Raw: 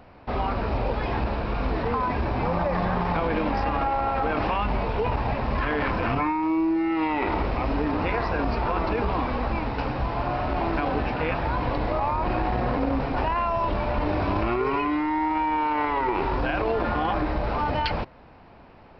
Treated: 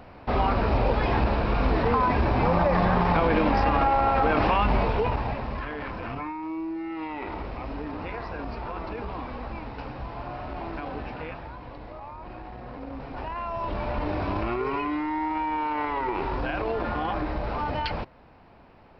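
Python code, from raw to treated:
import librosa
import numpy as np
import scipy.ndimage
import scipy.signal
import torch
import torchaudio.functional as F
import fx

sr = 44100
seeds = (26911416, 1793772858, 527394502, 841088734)

y = fx.gain(x, sr, db=fx.line((4.82, 3.0), (5.73, -9.0), (11.19, -9.0), (11.59, -15.5), (12.62, -15.5), (13.85, -3.5)))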